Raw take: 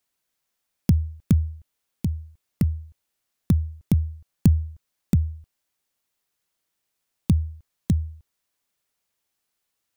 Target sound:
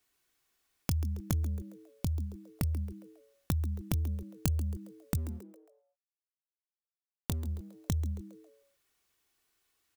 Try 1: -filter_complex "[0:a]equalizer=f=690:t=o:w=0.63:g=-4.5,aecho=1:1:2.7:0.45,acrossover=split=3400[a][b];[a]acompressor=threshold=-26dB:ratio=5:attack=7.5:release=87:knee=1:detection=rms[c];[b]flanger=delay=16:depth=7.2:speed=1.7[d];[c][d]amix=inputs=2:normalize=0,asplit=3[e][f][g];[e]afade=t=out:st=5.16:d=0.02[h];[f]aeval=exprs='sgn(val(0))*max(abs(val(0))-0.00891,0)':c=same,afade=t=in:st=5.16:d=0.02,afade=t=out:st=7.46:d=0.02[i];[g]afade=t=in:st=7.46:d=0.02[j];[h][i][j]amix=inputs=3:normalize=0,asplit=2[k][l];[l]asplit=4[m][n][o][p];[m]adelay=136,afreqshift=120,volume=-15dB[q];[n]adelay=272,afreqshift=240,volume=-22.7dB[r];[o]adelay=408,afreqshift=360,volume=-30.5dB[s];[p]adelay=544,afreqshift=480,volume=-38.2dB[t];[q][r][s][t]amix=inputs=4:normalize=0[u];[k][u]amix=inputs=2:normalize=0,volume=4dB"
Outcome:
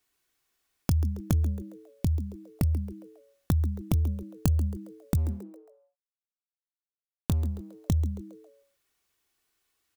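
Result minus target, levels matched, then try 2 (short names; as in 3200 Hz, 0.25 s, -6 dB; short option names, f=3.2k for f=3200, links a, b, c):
compressor: peak gain reduction -6.5 dB
-filter_complex "[0:a]equalizer=f=690:t=o:w=0.63:g=-4.5,aecho=1:1:2.7:0.45,acrossover=split=3400[a][b];[a]acompressor=threshold=-34dB:ratio=5:attack=7.5:release=87:knee=1:detection=rms[c];[b]flanger=delay=16:depth=7.2:speed=1.7[d];[c][d]amix=inputs=2:normalize=0,asplit=3[e][f][g];[e]afade=t=out:st=5.16:d=0.02[h];[f]aeval=exprs='sgn(val(0))*max(abs(val(0))-0.00891,0)':c=same,afade=t=in:st=5.16:d=0.02,afade=t=out:st=7.46:d=0.02[i];[g]afade=t=in:st=7.46:d=0.02[j];[h][i][j]amix=inputs=3:normalize=0,asplit=2[k][l];[l]asplit=4[m][n][o][p];[m]adelay=136,afreqshift=120,volume=-15dB[q];[n]adelay=272,afreqshift=240,volume=-22.7dB[r];[o]adelay=408,afreqshift=360,volume=-30.5dB[s];[p]adelay=544,afreqshift=480,volume=-38.2dB[t];[q][r][s][t]amix=inputs=4:normalize=0[u];[k][u]amix=inputs=2:normalize=0,volume=4dB"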